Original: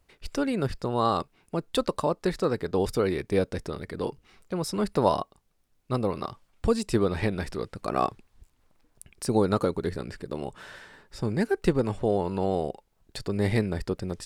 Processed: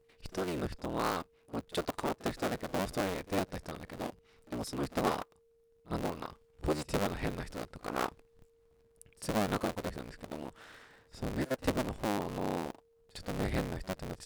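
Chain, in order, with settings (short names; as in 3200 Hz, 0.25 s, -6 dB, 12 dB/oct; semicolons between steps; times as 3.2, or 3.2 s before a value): cycle switcher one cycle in 3, inverted; reverse echo 53 ms -20.5 dB; whine 460 Hz -57 dBFS; gain -8.5 dB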